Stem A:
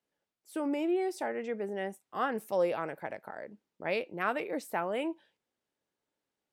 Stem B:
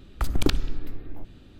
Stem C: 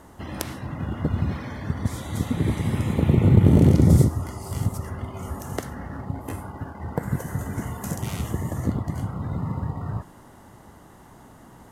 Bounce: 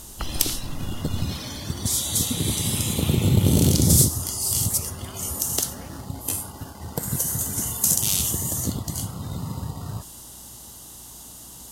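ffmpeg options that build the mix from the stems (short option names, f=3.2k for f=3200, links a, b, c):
-filter_complex "[0:a]acompressor=threshold=-32dB:ratio=6,adelay=850,volume=-12dB[a];[1:a]acompressor=threshold=-26dB:ratio=6,volume=-1dB[b];[2:a]aeval=exprs='val(0)+0.00355*(sin(2*PI*60*n/s)+sin(2*PI*2*60*n/s)/2+sin(2*PI*3*60*n/s)/3+sin(2*PI*4*60*n/s)/4+sin(2*PI*5*60*n/s)/5)':c=same,aexciter=amount=9.6:drive=5.9:freq=2.9k,asoftclip=type=tanh:threshold=-0.5dB,volume=-3dB[c];[a][b][c]amix=inputs=3:normalize=0"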